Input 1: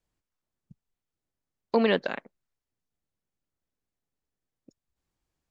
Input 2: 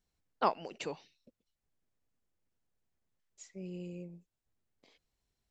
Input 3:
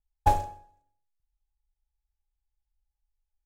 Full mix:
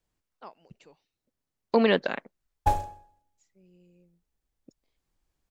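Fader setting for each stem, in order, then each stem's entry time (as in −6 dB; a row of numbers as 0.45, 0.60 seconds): +1.5, −16.5, −1.5 decibels; 0.00, 0.00, 2.40 seconds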